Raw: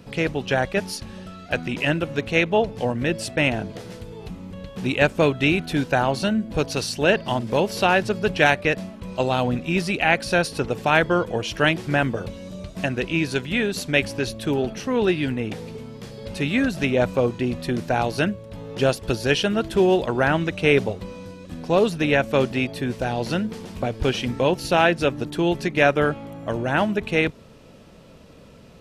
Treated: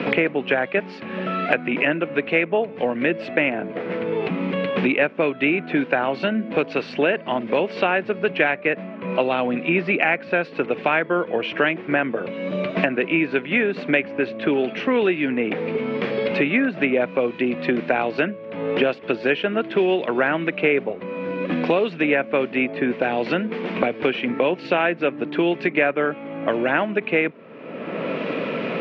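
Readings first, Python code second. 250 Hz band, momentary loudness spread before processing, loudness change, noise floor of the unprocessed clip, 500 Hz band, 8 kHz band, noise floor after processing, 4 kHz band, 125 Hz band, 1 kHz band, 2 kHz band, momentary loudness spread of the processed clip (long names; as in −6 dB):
+1.0 dB, 14 LU, 0.0 dB, −46 dBFS, +1.5 dB, below −25 dB, −37 dBFS, −4.0 dB, −7.0 dB, −0.5 dB, +2.0 dB, 6 LU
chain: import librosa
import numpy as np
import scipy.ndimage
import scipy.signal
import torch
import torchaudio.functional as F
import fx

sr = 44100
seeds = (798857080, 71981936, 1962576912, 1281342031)

y = fx.cabinet(x, sr, low_hz=200.0, low_slope=24, high_hz=2600.0, hz=(210.0, 850.0, 2300.0), db=(-4, -4, 5))
y = fx.band_squash(y, sr, depth_pct=100)
y = F.gain(torch.from_numpy(y), 1.0).numpy()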